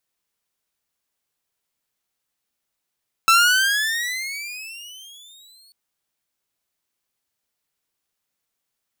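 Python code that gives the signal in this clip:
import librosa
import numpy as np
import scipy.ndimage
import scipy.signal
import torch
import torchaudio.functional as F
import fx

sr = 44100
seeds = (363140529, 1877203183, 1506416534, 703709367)

y = fx.riser_tone(sr, length_s=2.44, level_db=-8.0, wave='saw', hz=1320.0, rise_st=21.0, swell_db=-39)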